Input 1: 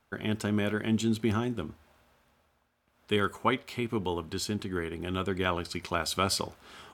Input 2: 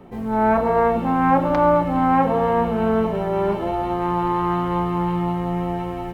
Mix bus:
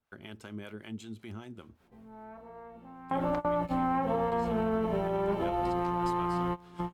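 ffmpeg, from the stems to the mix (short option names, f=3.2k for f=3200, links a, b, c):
-filter_complex "[0:a]agate=range=-7dB:threshold=-57dB:ratio=16:detection=peak,acompressor=threshold=-44dB:ratio=1.5,acrossover=split=530[a][b];[a]aeval=exprs='val(0)*(1-0.7/2+0.7/2*cos(2*PI*5.2*n/s))':c=same[c];[b]aeval=exprs='val(0)*(1-0.7/2-0.7/2*cos(2*PI*5.2*n/s))':c=same[d];[c][d]amix=inputs=2:normalize=0,volume=-4dB,asplit=2[e][f];[1:a]acompressor=threshold=-27dB:ratio=2,adelay=1800,volume=2.5dB[g];[f]apad=whole_len=349894[h];[g][h]sidechaingate=range=-26dB:threshold=-54dB:ratio=16:detection=peak[i];[e][i]amix=inputs=2:normalize=0,alimiter=limit=-21.5dB:level=0:latency=1:release=270"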